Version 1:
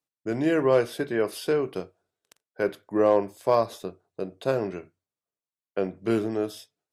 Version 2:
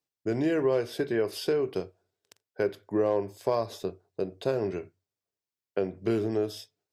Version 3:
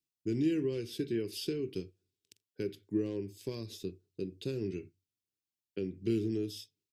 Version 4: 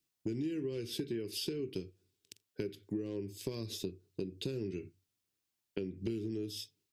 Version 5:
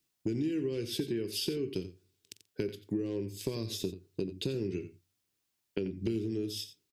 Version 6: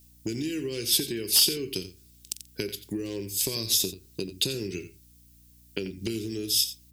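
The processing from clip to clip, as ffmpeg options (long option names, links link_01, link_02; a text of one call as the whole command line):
ffmpeg -i in.wav -af "equalizer=frequency=100:width_type=o:width=0.33:gain=9,equalizer=frequency=400:width_type=o:width=0.33:gain=5,equalizer=frequency=1250:width_type=o:width=0.33:gain=-4,equalizer=frequency=5000:width_type=o:width=0.33:gain=4,equalizer=frequency=10000:width_type=o:width=0.33:gain=-5,acompressor=threshold=-25dB:ratio=2.5" out.wav
ffmpeg -i in.wav -af "firequalizer=gain_entry='entry(330,0);entry(650,-28);entry(2600,-1)':delay=0.05:min_phase=1,volume=-2dB" out.wav
ffmpeg -i in.wav -af "acompressor=threshold=-42dB:ratio=6,volume=7dB" out.wav
ffmpeg -i in.wav -af "aecho=1:1:88:0.211,volume=4dB" out.wav
ffmpeg -i in.wav -af "crystalizer=i=8:c=0,aeval=exprs='0.282*(abs(mod(val(0)/0.282+3,4)-2)-1)':channel_layout=same,aeval=exprs='val(0)+0.00141*(sin(2*PI*60*n/s)+sin(2*PI*2*60*n/s)/2+sin(2*PI*3*60*n/s)/3+sin(2*PI*4*60*n/s)/4+sin(2*PI*5*60*n/s)/5)':channel_layout=same" out.wav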